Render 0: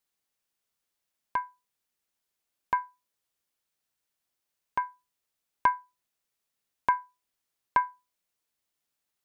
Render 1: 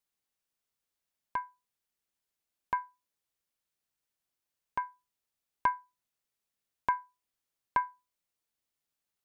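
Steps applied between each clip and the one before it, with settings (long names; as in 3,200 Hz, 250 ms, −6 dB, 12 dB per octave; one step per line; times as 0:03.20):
low-shelf EQ 200 Hz +3.5 dB
level −4.5 dB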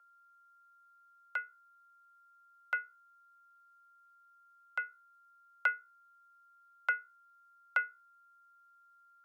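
steady tone 930 Hz −59 dBFS
frequency shifter +460 Hz
level −2.5 dB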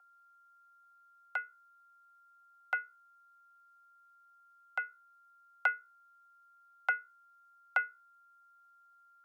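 parametric band 760 Hz +15 dB 0.26 octaves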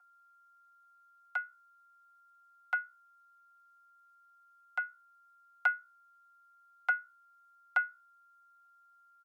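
high-pass filter 620 Hz 24 dB per octave
comb filter 5.6 ms
level −2 dB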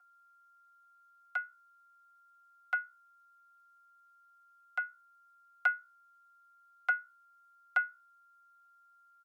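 notch filter 900 Hz, Q 5.3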